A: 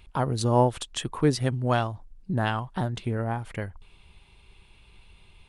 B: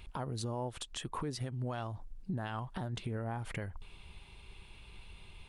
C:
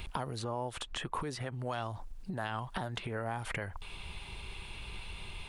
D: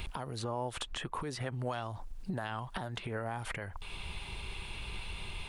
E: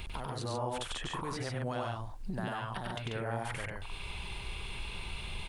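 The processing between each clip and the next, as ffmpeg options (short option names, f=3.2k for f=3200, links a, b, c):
-af "acompressor=threshold=-32dB:ratio=4,alimiter=level_in=6dB:limit=-24dB:level=0:latency=1:release=169,volume=-6dB,volume=1.5dB"
-filter_complex "[0:a]acrossover=split=550|2600[a][b][c];[a]acompressor=threshold=-52dB:ratio=4[d];[b]acompressor=threshold=-47dB:ratio=4[e];[c]acompressor=threshold=-59dB:ratio=4[f];[d][e][f]amix=inputs=3:normalize=0,volume=11dB"
-af "alimiter=level_in=3.5dB:limit=-24dB:level=0:latency=1:release=407,volume=-3.5dB,volume=2.5dB"
-af "aecho=1:1:96.21|139.9:0.794|0.708,volume=-2dB"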